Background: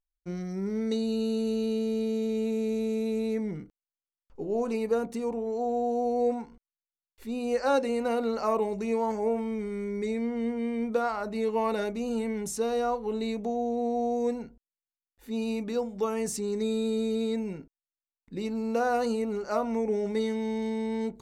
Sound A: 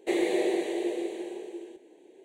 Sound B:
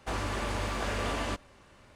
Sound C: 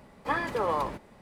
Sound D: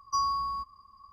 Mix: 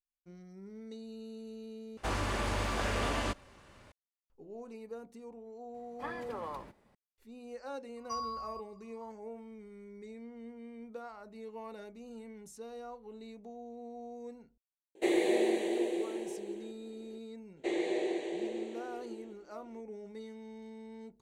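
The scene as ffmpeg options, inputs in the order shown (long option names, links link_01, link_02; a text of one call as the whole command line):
ffmpeg -i bed.wav -i cue0.wav -i cue1.wav -i cue2.wav -i cue3.wav -filter_complex "[1:a]asplit=2[link_01][link_02];[0:a]volume=-17.5dB[link_03];[link_02]lowpass=frequency=7600:width=0.5412,lowpass=frequency=7600:width=1.3066[link_04];[link_03]asplit=2[link_05][link_06];[link_05]atrim=end=1.974[link_07];[2:a]atrim=end=1.95,asetpts=PTS-STARTPTS,volume=-0.5dB[link_08];[link_06]atrim=start=3.916[link_09];[3:a]atrim=end=1.21,asetpts=PTS-STARTPTS,volume=-13dB,afade=type=in:duration=0.004:curve=hsin,afade=type=out:start_time=1.206:duration=0.004:curve=hsin,adelay=5740[link_10];[4:a]atrim=end=1.12,asetpts=PTS-STARTPTS,volume=-10dB,afade=type=in:duration=0.004:curve=hsin,afade=type=out:start_time=1.116:duration=0.004:curve=hsin,adelay=7970[link_11];[link_01]atrim=end=2.24,asetpts=PTS-STARTPTS,volume=-2dB,afade=type=in:duration=0.004:curve=hsin,afade=type=out:start_time=2.236:duration=0.004:curve=hsin,adelay=14950[link_12];[link_04]atrim=end=2.24,asetpts=PTS-STARTPTS,volume=-6.5dB,afade=type=in:duration=0.004:curve=hsin,afade=type=out:start_time=2.236:duration=0.004:curve=hsin,adelay=17570[link_13];[link_07][link_08]acrossfade=duration=0.004:curve1=hsin:curve2=hsin[link_14];[link_14][link_09]acrossfade=duration=0.004:curve1=hsin:curve2=hsin[link_15];[link_15][link_10][link_11][link_12][link_13]amix=inputs=5:normalize=0" out.wav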